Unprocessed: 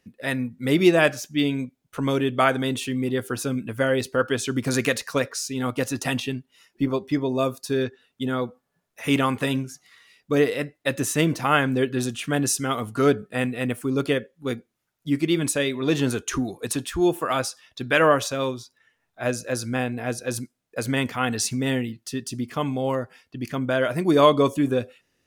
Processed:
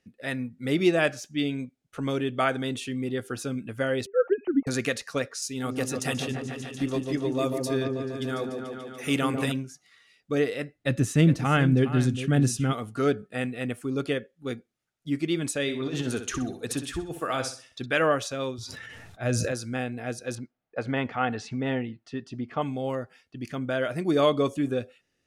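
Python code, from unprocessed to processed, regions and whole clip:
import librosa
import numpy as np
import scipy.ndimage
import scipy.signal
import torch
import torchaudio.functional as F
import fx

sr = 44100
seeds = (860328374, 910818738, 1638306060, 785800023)

y = fx.chain(x, sr, fx.sine_speech(),
    fx.lowpass(hz=1500.0, slope=12),
    fx.low_shelf(hz=440.0, db=9.5), at=(4.06, 4.67))
y = fx.chain(y, sr, fx.high_shelf(hz=6700.0, db=10.0),
    fx.echo_opening(ms=145, hz=750, octaves=1, feedback_pct=70, wet_db=-3), at=(5.42, 9.52))
y = fx.chain(y, sr, fx.bass_treble(bass_db=13, treble_db=-2),
    fx.echo_single(ms=414, db=-12.0), at=(10.75, 12.73))
y = fx.chain(y, sr, fx.over_compress(threshold_db=-23.0, ratio=-0.5),
    fx.room_flutter(wall_m=10.8, rt60_s=0.39), at=(15.62, 17.86))
y = fx.chain(y, sr, fx.peak_eq(hz=86.0, db=13.0, octaves=1.5),
    fx.sustainer(db_per_s=21.0), at=(18.58, 19.52))
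y = fx.chain(y, sr, fx.lowpass(hz=2900.0, slope=12),
    fx.peak_eq(hz=840.0, db=7.5, octaves=1.2), at=(20.35, 22.62))
y = scipy.signal.sosfilt(scipy.signal.butter(2, 10000.0, 'lowpass', fs=sr, output='sos'), y)
y = fx.notch(y, sr, hz=1000.0, q=7.2)
y = y * librosa.db_to_amplitude(-5.0)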